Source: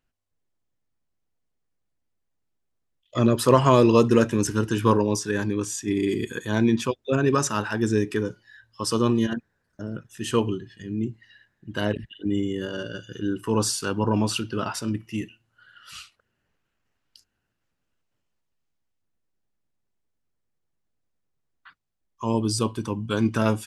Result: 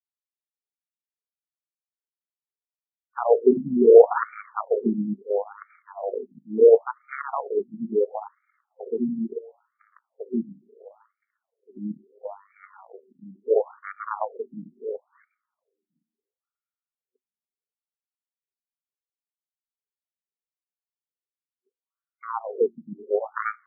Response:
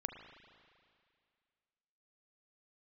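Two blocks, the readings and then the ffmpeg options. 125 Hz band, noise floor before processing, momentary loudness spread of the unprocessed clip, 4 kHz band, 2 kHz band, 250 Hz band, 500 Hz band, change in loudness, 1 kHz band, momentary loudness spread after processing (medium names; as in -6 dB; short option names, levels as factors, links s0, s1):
under -15 dB, -77 dBFS, 15 LU, under -40 dB, -7.0 dB, -7.0 dB, +4.0 dB, +1.5 dB, -3.5 dB, 22 LU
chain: -filter_complex "[0:a]asplit=2[s0][s1];[1:a]atrim=start_sample=2205,highshelf=f=6500:g=-5.5[s2];[s1][s2]afir=irnorm=-1:irlink=0,volume=1.26[s3];[s0][s3]amix=inputs=2:normalize=0,aeval=exprs='1.58*(cos(1*acos(clip(val(0)/1.58,-1,1)))-cos(1*PI/2))+0.01*(cos(4*acos(clip(val(0)/1.58,-1,1)))-cos(4*PI/2))+0.447*(cos(5*acos(clip(val(0)/1.58,-1,1)))-cos(5*PI/2))+0.631*(cos(6*acos(clip(val(0)/1.58,-1,1)))-cos(6*PI/2))+0.562*(cos(7*acos(clip(val(0)/1.58,-1,1)))-cos(7*PI/2))':c=same,superequalizer=6b=0.398:7b=3.98:11b=0.447,afftfilt=real='re*between(b*sr/1024,220*pow(1700/220,0.5+0.5*sin(2*PI*0.73*pts/sr))/1.41,220*pow(1700/220,0.5+0.5*sin(2*PI*0.73*pts/sr))*1.41)':imag='im*between(b*sr/1024,220*pow(1700/220,0.5+0.5*sin(2*PI*0.73*pts/sr))/1.41,220*pow(1700/220,0.5+0.5*sin(2*PI*0.73*pts/sr))*1.41)':win_size=1024:overlap=0.75,volume=0.376"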